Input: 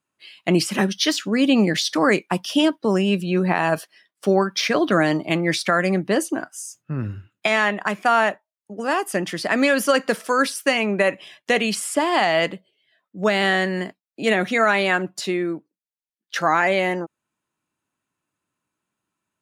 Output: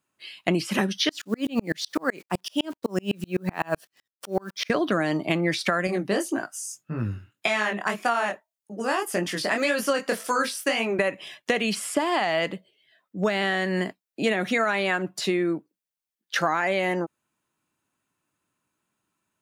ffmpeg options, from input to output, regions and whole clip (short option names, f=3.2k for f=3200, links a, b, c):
-filter_complex "[0:a]asettb=1/sr,asplit=3[a][b][c];[a]atrim=end=1.094[d];[b]atrim=start=1.09:end=4.7,asetpts=PTS-STARTPTS,afade=t=in:d=0.004:c=qsin,afade=t=out:st=3.606:d=0.004:c=qsin,acrusher=bits=8:dc=4:mix=0:aa=0.000001,highpass=110,aeval=exprs='val(0)*pow(10,-38*if(lt(mod(-7.9*n/s,1),2*abs(-7.9)/1000),1-mod(-7.9*n/s,1)/(2*abs(-7.9)/1000),(mod(-7.9*n/s,1)-2*abs(-7.9)/1000)/(1-2*abs(-7.9)/1000))/20)':c=same[e];[c]atrim=start=4.696[f];[d][e]acrossfade=d=0.004:c1=hsin:c2=qsin[g];[g][f]acrossfade=d=0.004:c1=qsin:c2=hsin,asettb=1/sr,asplit=3[h][i][j];[h]atrim=end=5.874[k];[i]atrim=start=5.87:end=10.99,asetpts=PTS-STARTPTS,afade=t=in:d=0.004:c=qsin,afade=t=out:st=5.116:d=0.004:c=qsin,bass=f=250:g=-2,treble=f=4k:g=4,flanger=delay=17:depth=7.7:speed=1.8[l];[j]atrim=start=10.986[m];[k][l]acrossfade=d=0.004:c1=hsin:c2=qsin[n];[n][m]acrossfade=d=0.004:c1=qsin:c2=hsin,acrossover=split=4200[o][p];[p]acompressor=threshold=-34dB:ratio=4:attack=1:release=60[q];[o][q]amix=inputs=2:normalize=0,highshelf=f=11k:g=4,acompressor=threshold=-22dB:ratio=6,volume=2dB"